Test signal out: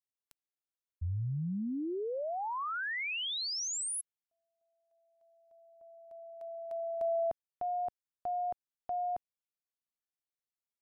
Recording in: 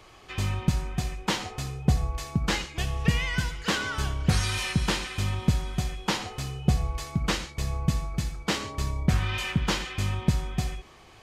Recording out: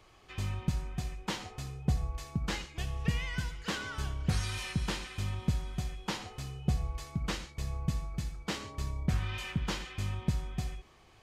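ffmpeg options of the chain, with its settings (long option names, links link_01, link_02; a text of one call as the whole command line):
ffmpeg -i in.wav -af "lowshelf=frequency=150:gain=3.5,volume=-9dB" out.wav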